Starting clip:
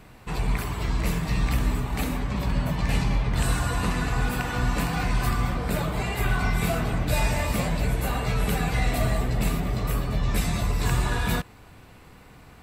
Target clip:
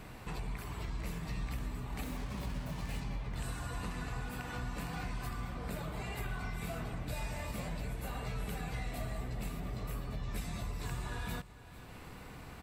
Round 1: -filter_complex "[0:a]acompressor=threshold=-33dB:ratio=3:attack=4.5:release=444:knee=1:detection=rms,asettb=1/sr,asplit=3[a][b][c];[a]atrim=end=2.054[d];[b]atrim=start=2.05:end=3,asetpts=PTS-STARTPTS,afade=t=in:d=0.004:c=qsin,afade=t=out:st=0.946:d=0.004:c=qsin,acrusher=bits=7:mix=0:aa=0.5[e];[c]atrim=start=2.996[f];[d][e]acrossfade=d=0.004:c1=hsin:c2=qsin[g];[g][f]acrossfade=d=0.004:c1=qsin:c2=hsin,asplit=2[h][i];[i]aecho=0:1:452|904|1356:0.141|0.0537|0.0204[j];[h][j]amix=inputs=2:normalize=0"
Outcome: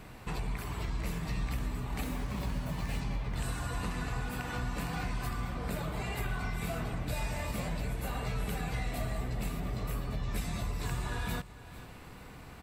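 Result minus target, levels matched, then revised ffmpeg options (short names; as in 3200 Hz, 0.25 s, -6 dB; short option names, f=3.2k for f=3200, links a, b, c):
compressor: peak gain reduction -4.5 dB
-filter_complex "[0:a]acompressor=threshold=-39.5dB:ratio=3:attack=4.5:release=444:knee=1:detection=rms,asettb=1/sr,asplit=3[a][b][c];[a]atrim=end=2.054[d];[b]atrim=start=2.05:end=3,asetpts=PTS-STARTPTS,afade=t=in:d=0.004:c=qsin,afade=t=out:st=0.946:d=0.004:c=qsin,acrusher=bits=7:mix=0:aa=0.5[e];[c]atrim=start=2.996[f];[d][e]acrossfade=d=0.004:c1=hsin:c2=qsin[g];[g][f]acrossfade=d=0.004:c1=qsin:c2=hsin,asplit=2[h][i];[i]aecho=0:1:452|904|1356:0.141|0.0537|0.0204[j];[h][j]amix=inputs=2:normalize=0"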